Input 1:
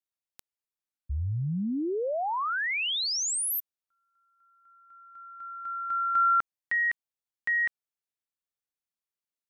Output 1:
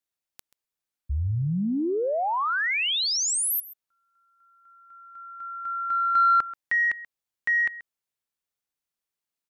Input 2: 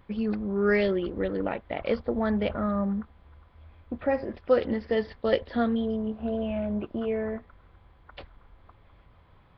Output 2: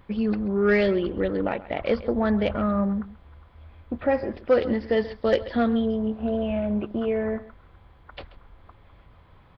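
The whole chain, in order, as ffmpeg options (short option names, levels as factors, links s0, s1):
-af "aecho=1:1:133:0.133,aeval=exprs='0.355*sin(PI/2*1.41*val(0)/0.355)':c=same,volume=0.708"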